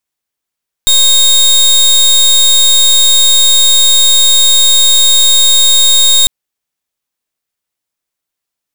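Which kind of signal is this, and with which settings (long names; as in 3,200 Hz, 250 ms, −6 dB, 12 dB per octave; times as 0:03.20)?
pulse wave 3,720 Hz, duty 26% −6.5 dBFS 5.40 s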